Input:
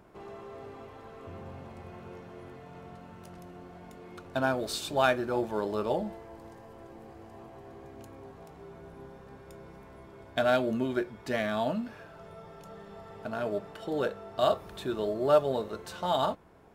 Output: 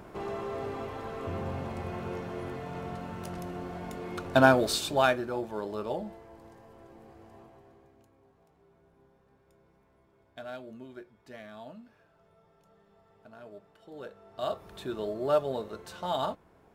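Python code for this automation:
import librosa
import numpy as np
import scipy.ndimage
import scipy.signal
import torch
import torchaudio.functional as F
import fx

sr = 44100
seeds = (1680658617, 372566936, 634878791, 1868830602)

y = fx.gain(x, sr, db=fx.line((4.44, 9.0), (5.39, -4.0), (7.36, -4.0), (8.11, -16.0), (13.83, -16.0), (14.77, -3.0)))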